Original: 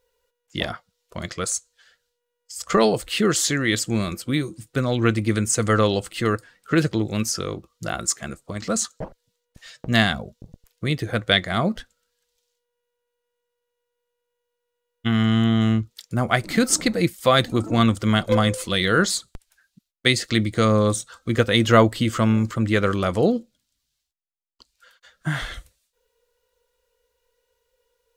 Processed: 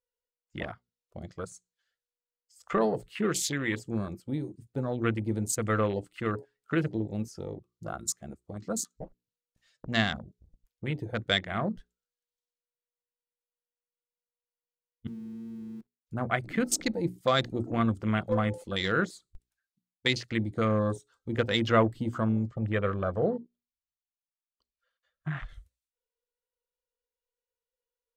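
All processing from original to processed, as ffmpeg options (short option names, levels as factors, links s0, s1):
-filter_complex "[0:a]asettb=1/sr,asplit=3[s0][s1][s2];[s0]atrim=end=15.074[s3];[s1]atrim=start=15.07:end=16.07,asetpts=PTS-STARTPTS,afade=t=in:d=0.004:c=qsin,afade=t=out:st=0.996:d=0.004:c=qsin,acompressor=threshold=0.0251:ratio=2.5:attack=3.2:release=140:knee=1:detection=peak,asuperpass=centerf=260:order=12:qfactor=0.73,acrusher=bits=7:dc=4:mix=0:aa=0.000001[s4];[s2]atrim=start=16.066[s5];[s3][s4]acrossfade=d=0.004:c1=hsin:c2=qsin[s6];[s6][s5]acrossfade=d=0.004:c1=qsin:c2=hsin,asettb=1/sr,asplit=3[s7][s8][s9];[s7]atrim=end=22.474[s10];[s8]atrim=start=22.47:end=25.49,asetpts=PTS-STARTPTS,afade=t=in:d=0.004:c=qsin,afade=t=out:st=3.016:d=0.004:c=qsin,lowpass=7100,highshelf=f=3000:g=-7.5,aecho=1:1:1.7:0.4,atrim=end_sample=133182[s11];[s9]atrim=start=25.486[s12];[s10][s11]acrossfade=d=0.004:c1=hsin:c2=qsin[s13];[s13][s12]acrossfade=d=0.004:c1=qsin:c2=hsin,bandreject=f=60:t=h:w=6,bandreject=f=120:t=h:w=6,bandreject=f=180:t=h:w=6,bandreject=f=240:t=h:w=6,bandreject=f=300:t=h:w=6,bandreject=f=360:t=h:w=6,bandreject=f=420:t=h:w=6,afwtdn=0.0398,volume=0.398"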